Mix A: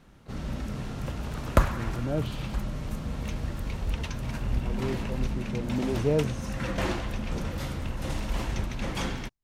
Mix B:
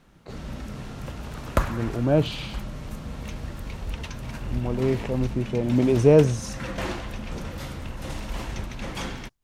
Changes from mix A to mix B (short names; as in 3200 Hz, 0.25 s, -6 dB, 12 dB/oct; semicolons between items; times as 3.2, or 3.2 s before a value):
speech +11.0 dB; master: add low shelf 360 Hz -2.5 dB